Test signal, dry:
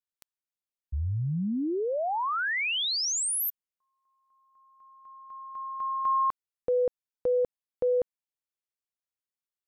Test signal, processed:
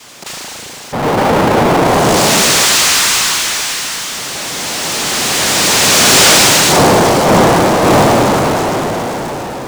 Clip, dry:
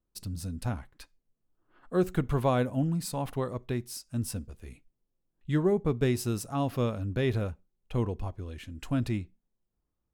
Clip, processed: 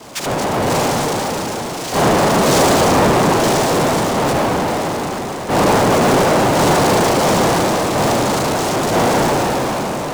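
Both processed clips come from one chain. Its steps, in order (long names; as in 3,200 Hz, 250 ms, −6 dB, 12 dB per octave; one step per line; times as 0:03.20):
spring reverb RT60 2.2 s, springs 36 ms, chirp 40 ms, DRR −9 dB
cochlear-implant simulation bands 2
power curve on the samples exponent 0.35
level −3.5 dB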